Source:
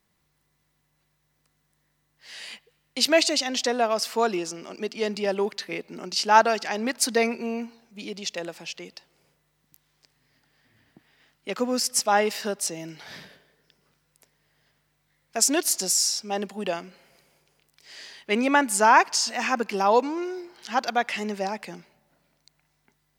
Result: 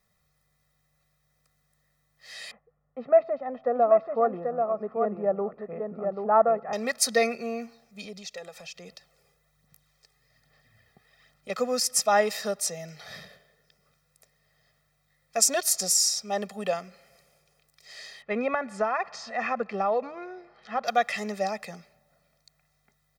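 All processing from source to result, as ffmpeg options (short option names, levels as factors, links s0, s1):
-filter_complex "[0:a]asettb=1/sr,asplit=3[s0][s1][s2];[s0]atrim=end=2.514[s3];[s1]atrim=start=2.51:end=6.73,asetpts=PTS-STARTPTS,afade=t=in:d=0.004:c=qsin,afade=t=out:st=4.216:d=0.004:c=qsin,lowpass=f=1200:w=0.5412,lowpass=f=1200:w=1.3066,aecho=1:1:786:0.596,atrim=end_sample=186102[s4];[s2]atrim=start=6.726[s5];[s3][s4]acrossfade=d=0.004:c1=hsin:c2=qsin[s6];[s6][s5]acrossfade=d=0.004:c1=qsin:c2=hsin,asettb=1/sr,asplit=3[s7][s8][s9];[s7]atrim=end=8.054[s10];[s8]atrim=start=8.05:end=11.5,asetpts=PTS-STARTPTS,afade=t=in:d=0.004:c=qsin,afade=t=out:st=3.446:d=0.004:c=qsin,acompressor=threshold=0.00794:ratio=2:attack=3.2:release=140:knee=1:detection=peak,aphaser=in_gain=1:out_gain=1:delay=2.5:decay=0.43:speed=1.2:type=sinusoidal[s11];[s9]atrim=start=11.496[s12];[s10][s11]acrossfade=d=0.004:c1=hsin:c2=qsin[s13];[s13][s12]acrossfade=d=0.004:c1=qsin:c2=hsin,asettb=1/sr,asplit=3[s14][s15][s16];[s14]atrim=end=18.224[s17];[s15]atrim=start=18.22:end=20.85,asetpts=PTS-STARTPTS,afade=t=in:d=0.004:c=qsin,afade=t=out:st=2.626:d=0.004:c=qsin,lowpass=2100,acompressor=threshold=0.112:ratio=10:attack=3.2:release=140:knee=1:detection=peak[s18];[s16]atrim=start=20.846[s19];[s17][s18]acrossfade=d=0.004:c1=hsin:c2=qsin[s20];[s20][s19]acrossfade=d=0.004:c1=qsin:c2=hsin,bandreject=f=2900:w=5.8,aecho=1:1:1.6:0.91,volume=0.708"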